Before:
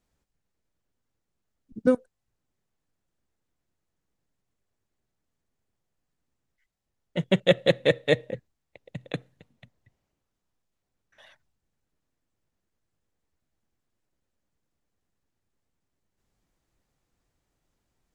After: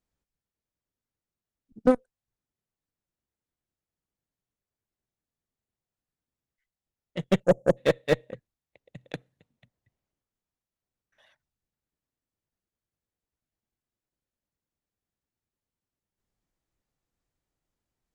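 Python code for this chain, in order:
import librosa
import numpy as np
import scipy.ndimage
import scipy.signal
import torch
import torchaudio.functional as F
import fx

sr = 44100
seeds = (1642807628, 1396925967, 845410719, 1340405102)

y = fx.spec_erase(x, sr, start_s=7.44, length_s=0.33, low_hz=880.0, high_hz=5300.0)
y = fx.cheby_harmonics(y, sr, harmonics=(4, 5, 7), levels_db=(-27, -23, -17), full_scale_db=-6.0)
y = fx.slew_limit(y, sr, full_power_hz=130.0)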